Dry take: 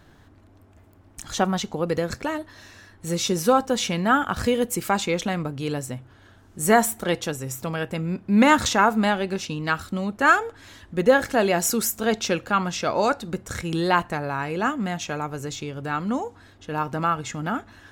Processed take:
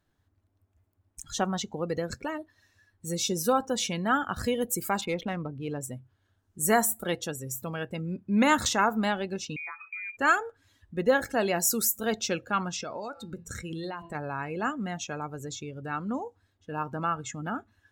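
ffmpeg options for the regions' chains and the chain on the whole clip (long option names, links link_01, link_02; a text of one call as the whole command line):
ffmpeg -i in.wav -filter_complex "[0:a]asettb=1/sr,asplit=3[link_01][link_02][link_03];[link_01]atrim=end=5.014[link_04];[link_02]atrim=start=5.01:end=5.81,asetpts=PTS-STARTPTS,afade=type=in:duration=0.004:curve=qsin,afade=type=out:start_time=0.796:duration=0.004:curve=qsin,lowpass=4400,adynamicsmooth=sensitivity=6:basefreq=1700[link_05];[link_03]atrim=start=5.806[link_06];[link_04][link_05]acrossfade=duration=0.004:curve1=hsin:curve2=qsin[link_07];[link_07][link_06]acrossfade=duration=0.004:curve1=qsin:curve2=hsin,asettb=1/sr,asplit=3[link_08][link_09][link_10];[link_08]atrim=end=9.564[link_11];[link_09]atrim=start=9.56:end=10.17,asetpts=PTS-STARTPTS,afade=type=in:duration=0.004:curve=qsin,afade=type=out:start_time=0.606:duration=0.004:curve=qsin,lowpass=frequency=2200:width_type=q:width=0.5098,lowpass=frequency=2200:width_type=q:width=0.6013,lowpass=frequency=2200:width_type=q:width=0.9,lowpass=frequency=2200:width_type=q:width=2.563,afreqshift=-2600,acompressor=threshold=-29dB:ratio=6:attack=3.2:release=140:knee=1:detection=peak,bandreject=frequency=214.4:width_type=h:width=4,bandreject=frequency=428.8:width_type=h:width=4,bandreject=frequency=643.2:width_type=h:width=4,bandreject=frequency=857.6:width_type=h:width=4,bandreject=frequency=1072:width_type=h:width=4,bandreject=frequency=1286.4:width_type=h:width=4,bandreject=frequency=1500.8:width_type=h:width=4,bandreject=frequency=1715.2:width_type=h:width=4,bandreject=frequency=1929.6:width_type=h:width=4,bandreject=frequency=2144:width_type=h:width=4,bandreject=frequency=2358.4:width_type=h:width=4,bandreject=frequency=2572.8:width_type=h:width=4,bandreject=frequency=2787.2:width_type=h:width=4,bandreject=frequency=3001.6:width_type=h:width=4,bandreject=frequency=3216:width_type=h:width=4,bandreject=frequency=3430.4:width_type=h:width=4,bandreject=frequency=3644.8:width_type=h:width=4,bandreject=frequency=3859.2:width_type=h:width=4,bandreject=frequency=4073.6:width_type=h:width=4,bandreject=frequency=4288:width_type=h:width=4,bandreject=frequency=4502.4:width_type=h:width=4,bandreject=frequency=4716.8:width_type=h:width=4,bandreject=frequency=4931.2:width_type=h:width=4,bandreject=frequency=5145.6:width_type=h:width=4,bandreject=frequency=5360:width_type=h:width=4,bandreject=frequency=5574.4:width_type=h:width=4,bandreject=frequency=5788.8:width_type=h:width=4,bandreject=frequency=6003.2:width_type=h:width=4,bandreject=frequency=6217.6:width_type=h:width=4,bandreject=frequency=6432:width_type=h:width=4,bandreject=frequency=6646.4:width_type=h:width=4,bandreject=frequency=6860.8:width_type=h:width=4,bandreject=frequency=7075.2:width_type=h:width=4,bandreject=frequency=7289.6:width_type=h:width=4,bandreject=frequency=7504:width_type=h:width=4,bandreject=frequency=7718.4:width_type=h:width=4,bandreject=frequency=7932.8:width_type=h:width=4,bandreject=frequency=8147.2:width_type=h:width=4,bandreject=frequency=8361.6:width_type=h:width=4,bandreject=frequency=8576:width_type=h:width=4[link_12];[link_10]atrim=start=10.166[link_13];[link_11][link_12]acrossfade=duration=0.004:curve1=hsin:curve2=qsin[link_14];[link_14][link_13]acrossfade=duration=0.004:curve1=qsin:curve2=hsin,asettb=1/sr,asplit=3[link_15][link_16][link_17];[link_15]atrim=end=12.744[link_18];[link_16]atrim=start=12.74:end=14.15,asetpts=PTS-STARTPTS,afade=type=in:duration=0.004:curve=qsin,afade=type=out:start_time=1.406:duration=0.004:curve=qsin,bandreject=frequency=168.6:width_type=h:width=4,bandreject=frequency=337.2:width_type=h:width=4,bandreject=frequency=505.8:width_type=h:width=4,bandreject=frequency=674.4:width_type=h:width=4,bandreject=frequency=843:width_type=h:width=4,bandreject=frequency=1011.6:width_type=h:width=4,bandreject=frequency=1180.2:width_type=h:width=4,bandreject=frequency=1348.8:width_type=h:width=4,bandreject=frequency=1517.4:width_type=h:width=4,bandreject=frequency=1686:width_type=h:width=4,bandreject=frequency=1854.6:width_type=h:width=4,bandreject=frequency=2023.2:width_type=h:width=4,bandreject=frequency=2191.8:width_type=h:width=4,bandreject=frequency=2360.4:width_type=h:width=4,bandreject=frequency=2529:width_type=h:width=4,bandreject=frequency=2697.6:width_type=h:width=4,bandreject=frequency=2866.2:width_type=h:width=4,bandreject=frequency=3034.8:width_type=h:width=4,bandreject=frequency=3203.4:width_type=h:width=4,bandreject=frequency=3372:width_type=h:width=4,bandreject=frequency=3540.6:width_type=h:width=4,bandreject=frequency=3709.2:width_type=h:width=4,bandreject=frequency=3877.8:width_type=h:width=4,bandreject=frequency=4046.4:width_type=h:width=4,bandreject=frequency=4215:width_type=h:width=4,bandreject=frequency=4383.6:width_type=h:width=4,bandreject=frequency=4552.2:width_type=h:width=4,bandreject=frequency=4720.8:width_type=h:width=4,bandreject=frequency=4889.4:width_type=h:width=4,bandreject=frequency=5058:width_type=h:width=4,bandreject=frequency=5226.6:width_type=h:width=4,bandreject=frequency=5395.2:width_type=h:width=4,acompressor=threshold=-25dB:ratio=16:attack=3.2:release=140:knee=1:detection=peak[link_19];[link_17]atrim=start=14.146[link_20];[link_18][link_19]acrossfade=duration=0.004:curve1=hsin:curve2=qsin[link_21];[link_21][link_20]acrossfade=duration=0.004:curve1=qsin:curve2=hsin,aemphasis=mode=production:type=50fm,afftdn=noise_reduction=17:noise_floor=-34,highshelf=frequency=8800:gain=-10.5,volume=-6dB" out.wav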